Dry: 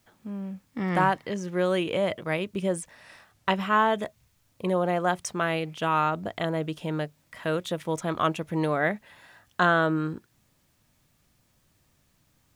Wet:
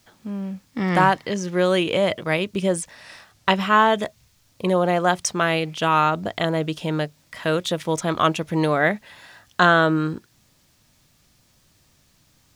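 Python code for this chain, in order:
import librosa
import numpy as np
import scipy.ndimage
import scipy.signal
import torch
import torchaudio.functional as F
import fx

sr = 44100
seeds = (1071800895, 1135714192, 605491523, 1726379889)

y = fx.peak_eq(x, sr, hz=4900.0, db=6.0, octaves=1.4)
y = y * 10.0 ** (5.5 / 20.0)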